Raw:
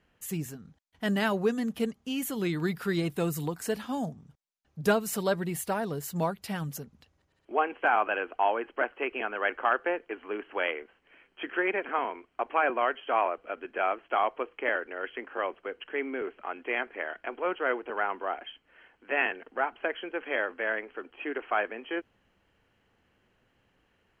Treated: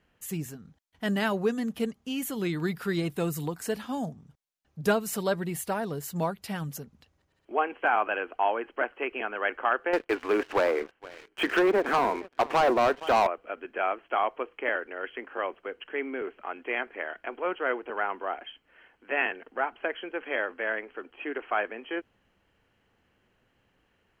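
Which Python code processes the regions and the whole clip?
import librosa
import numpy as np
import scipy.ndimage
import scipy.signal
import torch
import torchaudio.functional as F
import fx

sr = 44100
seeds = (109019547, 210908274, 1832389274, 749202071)

y = fx.chain(x, sr, fx.env_lowpass_down(base_hz=1000.0, full_db=-26.0),
    fx.echo_feedback(ms=466, feedback_pct=32, wet_db=-22.0),
    fx.leveller(passes=3), at=(9.93, 13.27))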